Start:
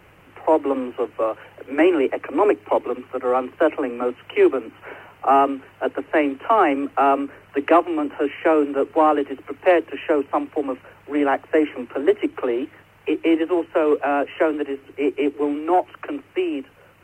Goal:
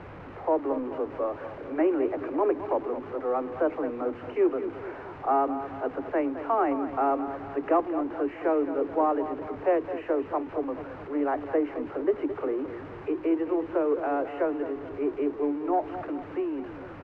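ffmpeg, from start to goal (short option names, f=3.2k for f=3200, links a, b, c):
-af "aeval=exprs='val(0)+0.5*0.0422*sgn(val(0))':c=same,lowpass=1.3k,aecho=1:1:216|432|648|864|1080:0.266|0.136|0.0692|0.0353|0.018,volume=-8.5dB"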